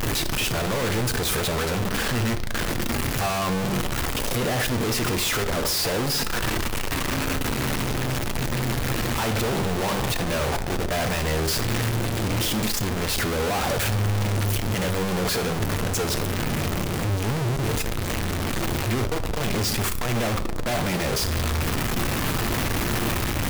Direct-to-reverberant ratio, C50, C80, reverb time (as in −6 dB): 9.0 dB, 13.0 dB, 16.5 dB, 1.0 s